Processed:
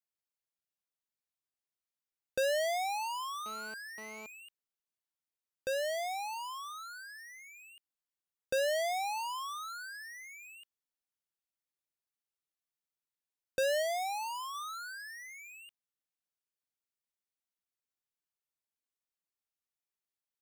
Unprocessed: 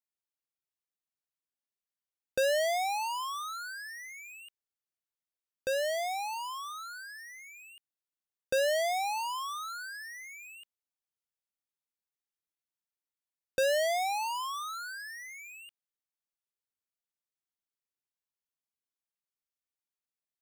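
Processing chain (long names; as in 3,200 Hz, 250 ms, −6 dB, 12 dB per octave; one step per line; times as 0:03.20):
0:03.46–0:04.26: phone interference −46 dBFS
0:13.82–0:14.55: parametric band 2,100 Hz −3 dB 2.5 octaves
level −3 dB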